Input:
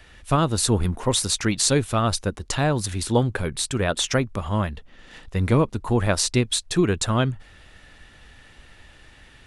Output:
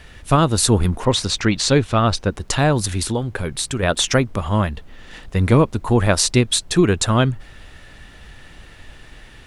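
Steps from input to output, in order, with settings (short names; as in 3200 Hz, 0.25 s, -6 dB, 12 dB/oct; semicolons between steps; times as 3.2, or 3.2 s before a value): 1.05–2.35 LPF 5100 Hz 12 dB/oct; 3.05–3.83 compressor 3:1, threshold -26 dBFS, peak gain reduction 9.5 dB; added noise brown -49 dBFS; gain +5 dB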